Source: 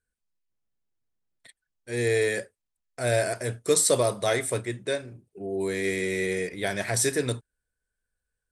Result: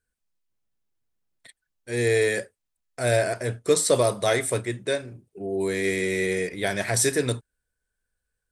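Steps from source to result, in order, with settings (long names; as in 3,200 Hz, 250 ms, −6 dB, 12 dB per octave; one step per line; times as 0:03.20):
0:03.17–0:03.95: high-shelf EQ 5,900 Hz −7.5 dB
level +2.5 dB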